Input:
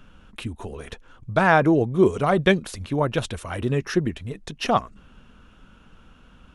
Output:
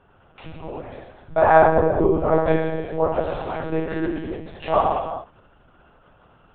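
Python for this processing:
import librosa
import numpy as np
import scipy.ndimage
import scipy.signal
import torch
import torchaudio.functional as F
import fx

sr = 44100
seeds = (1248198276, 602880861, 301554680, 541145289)

y = scipy.signal.sosfilt(scipy.signal.butter(2, 48.0, 'highpass', fs=sr, output='sos'), x)
y = fx.peak_eq(y, sr, hz=290.0, db=-5.5, octaves=0.36)
y = fx.rev_gated(y, sr, seeds[0], gate_ms=480, shape='falling', drr_db=-6.0)
y = fx.lpc_monotone(y, sr, seeds[1], pitch_hz=160.0, order=10)
y = fx.lowpass(y, sr, hz=fx.steps((0.0, 2300.0), (1.67, 1300.0), (3.32, 2900.0)), slope=6)
y = fx.peak_eq(y, sr, hz=700.0, db=11.5, octaves=1.6)
y = y * 10.0 ** (-10.0 / 20.0)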